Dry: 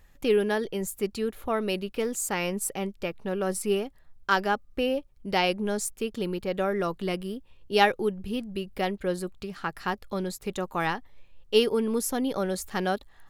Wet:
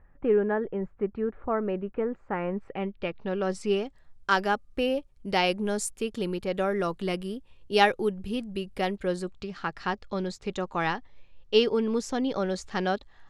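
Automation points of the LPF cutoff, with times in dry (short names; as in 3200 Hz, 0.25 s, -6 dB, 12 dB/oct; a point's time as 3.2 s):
LPF 24 dB/oct
2.49 s 1700 Hz
3.17 s 4500 Hz
4.31 s 11000 Hz
8.9 s 11000 Hz
9.45 s 6500 Hz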